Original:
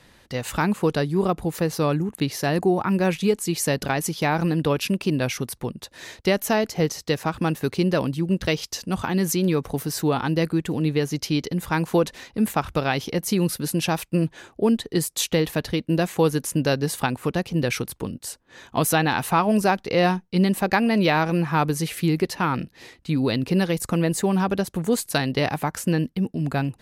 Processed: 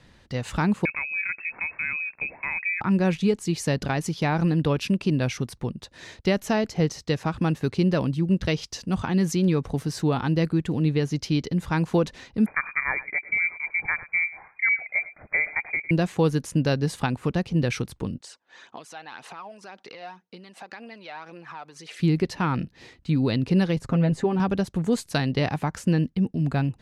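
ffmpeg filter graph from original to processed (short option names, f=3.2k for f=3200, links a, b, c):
-filter_complex "[0:a]asettb=1/sr,asplit=3[a][b][c];[a]atrim=end=0.854[d];[b]atrim=start=0.85:end=2.81,asetpts=PTS-STARTPTS,afade=t=in:d=0.004:c=qsin,afade=t=out:st=1.956:d=0.004:c=qsin,lowpass=f=2.3k:t=q:w=0.5098,lowpass=f=2.3k:t=q:w=0.6013,lowpass=f=2.3k:t=q:w=0.9,lowpass=f=2.3k:t=q:w=2.563,afreqshift=-2700,acompressor=threshold=-28dB:ratio=1.5:attack=3.2:release=140:knee=1:detection=peak,equalizer=f=210:t=o:w=2.5:g=6.5[e];[c]atrim=start=2.806[f];[d][e]acrossfade=d=0.004:c1=hsin:c2=qsin[g];[g][f]acrossfade=d=0.004:c1=qsin:c2=hsin,asettb=1/sr,asplit=3[h][i][j];[h]atrim=end=12.464[k];[i]atrim=start=12.46:end=15.91,asetpts=PTS-STARTPTS,afade=t=in:d=0.004:c=qsin,afade=t=out:st=3.446:d=0.004:c=qsin,aecho=1:1:104:0.141,atrim=end_sample=152145,lowpass=f=2.1k:t=q:w=0.5098,lowpass=f=2.1k:t=q:w=0.6013,lowpass=f=2.1k:t=q:w=0.9,lowpass=f=2.1k:t=q:w=2.563,afreqshift=-2500[l];[j]atrim=start=15.906[m];[k][l]acrossfade=d=0.004:c1=hsin:c2=qsin[n];[n][m]acrossfade=d=0.004:c1=qsin:c2=hsin,asettb=1/sr,asplit=3[o][p][q];[o]atrim=end=18.214[r];[p]atrim=start=18.21:end=22,asetpts=PTS-STARTPTS,afade=t=in:d=0.004:c=qsin,afade=t=out:st=3.786:d=0.004:c=qsin,acompressor=threshold=-30dB:ratio=16:attack=3.2:release=140:knee=1:detection=peak,aphaser=in_gain=1:out_gain=1:delay=1.5:decay=0.44:speed=1.9:type=triangular,highpass=530,lowpass=7.6k[s];[q]atrim=start=21.996[t];[r][s]acrossfade=d=0.004:c1=hsin:c2=qsin[u];[u][t]acrossfade=d=0.004:c1=qsin:c2=hsin,asettb=1/sr,asplit=3[v][w][x];[v]atrim=end=23.764[y];[w]atrim=start=23.76:end=24.4,asetpts=PTS-STARTPTS,afade=t=in:d=0.004:c=qsin,afade=t=out:st=0.636:d=0.004:c=qsin,lowpass=f=2.1k:p=1,aecho=1:1:7.5:0.61,atrim=end_sample=28224[z];[x]atrim=start=24.396[aa];[y][z]acrossfade=d=0.004:c1=hsin:c2=qsin[ab];[ab][aa]acrossfade=d=0.004:c1=qsin:c2=hsin,lowpass=7.1k,bass=f=250:g=6,treble=f=4k:g=0,volume=-3.5dB"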